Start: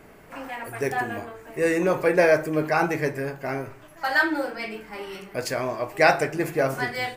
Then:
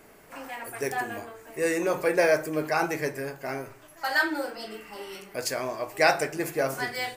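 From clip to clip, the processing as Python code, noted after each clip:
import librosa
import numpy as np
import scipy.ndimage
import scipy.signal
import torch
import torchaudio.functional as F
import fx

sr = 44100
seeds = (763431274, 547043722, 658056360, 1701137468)

y = fx.spec_repair(x, sr, seeds[0], start_s=4.58, length_s=0.46, low_hz=1100.0, high_hz=2900.0, source='after')
y = fx.bass_treble(y, sr, bass_db=-4, treble_db=7)
y = fx.hum_notches(y, sr, base_hz=60, count=3)
y = y * 10.0 ** (-3.5 / 20.0)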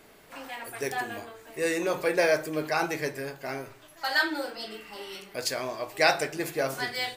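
y = fx.peak_eq(x, sr, hz=3700.0, db=8.5, octaves=0.76)
y = y * 10.0 ** (-2.0 / 20.0)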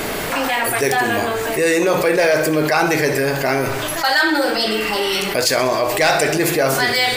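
y = np.clip(x, -10.0 ** (-16.5 / 20.0), 10.0 ** (-16.5 / 20.0))
y = fx.echo_feedback(y, sr, ms=65, feedback_pct=59, wet_db=-17)
y = fx.env_flatten(y, sr, amount_pct=70)
y = y * 10.0 ** (7.0 / 20.0)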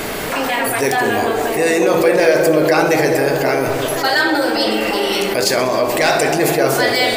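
y = fx.echo_wet_bandpass(x, sr, ms=213, feedback_pct=69, hz=420.0, wet_db=-3.0)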